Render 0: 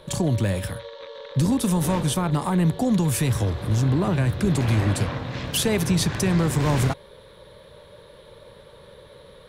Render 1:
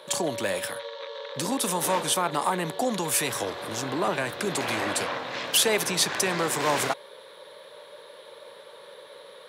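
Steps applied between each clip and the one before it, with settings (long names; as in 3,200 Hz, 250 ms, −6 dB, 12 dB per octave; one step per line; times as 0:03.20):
high-pass filter 500 Hz 12 dB per octave
level +3.5 dB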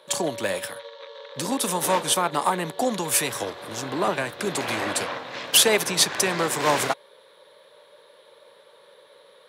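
expander for the loud parts 1.5 to 1, over −42 dBFS
level +5.5 dB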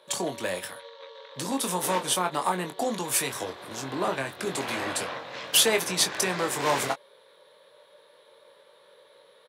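double-tracking delay 22 ms −7 dB
level −4.5 dB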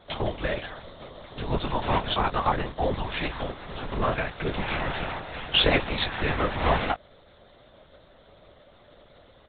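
linear-prediction vocoder at 8 kHz whisper
level +2.5 dB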